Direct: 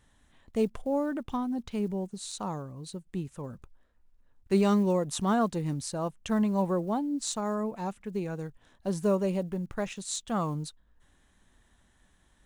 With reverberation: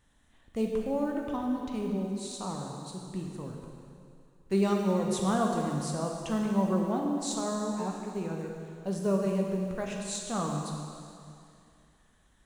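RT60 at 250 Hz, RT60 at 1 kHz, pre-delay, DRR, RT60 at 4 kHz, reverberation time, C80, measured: 2.4 s, 2.5 s, 10 ms, 0.0 dB, 2.5 s, 2.5 s, 3.0 dB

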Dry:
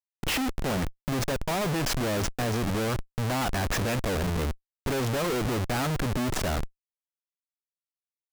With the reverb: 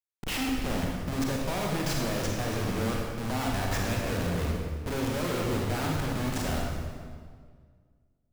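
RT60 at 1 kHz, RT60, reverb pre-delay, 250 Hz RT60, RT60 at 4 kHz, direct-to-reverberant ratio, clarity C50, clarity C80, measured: 1.7 s, 1.8 s, 31 ms, 2.2 s, 1.4 s, -1.0 dB, 0.5 dB, 2.0 dB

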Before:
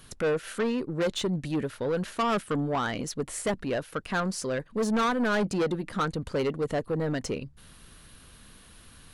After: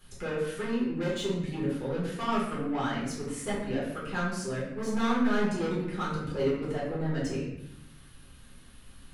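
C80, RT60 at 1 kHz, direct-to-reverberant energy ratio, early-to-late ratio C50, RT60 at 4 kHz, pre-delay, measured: 5.0 dB, 0.70 s, -8.0 dB, 2.0 dB, 0.60 s, 5 ms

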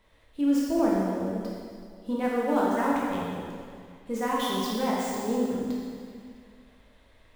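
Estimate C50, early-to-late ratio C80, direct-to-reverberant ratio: -2.5 dB, 0.0 dB, -6.0 dB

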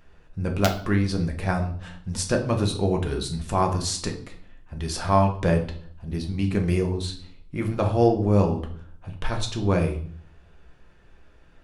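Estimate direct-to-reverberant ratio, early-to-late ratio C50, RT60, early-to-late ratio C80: 2.5 dB, 10.5 dB, 0.55 s, 14.5 dB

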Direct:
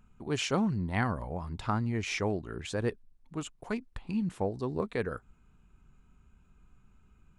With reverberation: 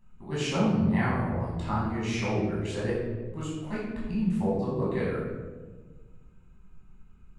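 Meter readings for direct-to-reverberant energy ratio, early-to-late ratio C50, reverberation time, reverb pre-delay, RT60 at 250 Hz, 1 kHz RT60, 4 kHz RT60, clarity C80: -8.0 dB, 0.0 dB, 1.4 s, 13 ms, 2.0 s, 1.1 s, 0.75 s, 3.0 dB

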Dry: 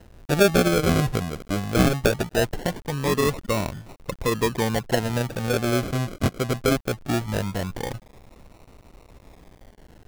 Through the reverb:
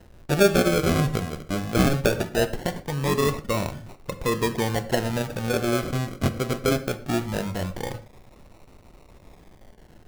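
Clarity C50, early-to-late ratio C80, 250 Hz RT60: 14.0 dB, 17.5 dB, n/a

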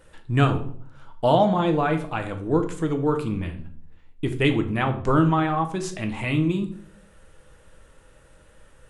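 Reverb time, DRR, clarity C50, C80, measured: 0.55 s, 5.5 dB, 11.5 dB, 16.0 dB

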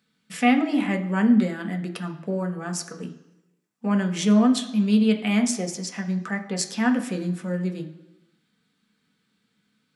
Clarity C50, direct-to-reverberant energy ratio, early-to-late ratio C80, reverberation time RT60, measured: 11.5 dB, 4.0 dB, 14.0 dB, 1.0 s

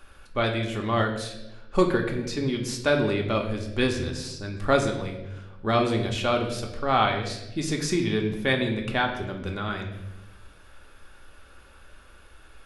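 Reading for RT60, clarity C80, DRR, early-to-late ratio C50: 1.0 s, 10.0 dB, 1.5 dB, 7.5 dB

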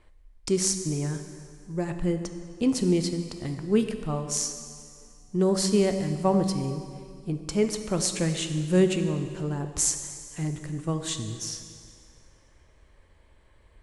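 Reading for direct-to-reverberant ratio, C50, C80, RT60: 7.0 dB, 8.0 dB, 9.0 dB, 2.2 s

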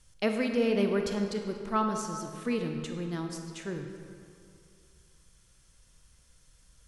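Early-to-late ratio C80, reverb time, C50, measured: 6.0 dB, 2.4 s, 5.0 dB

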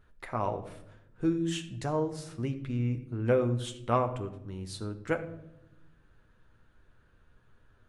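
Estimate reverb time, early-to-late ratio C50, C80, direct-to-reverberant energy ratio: 0.85 s, 12.5 dB, 15.0 dB, 5.0 dB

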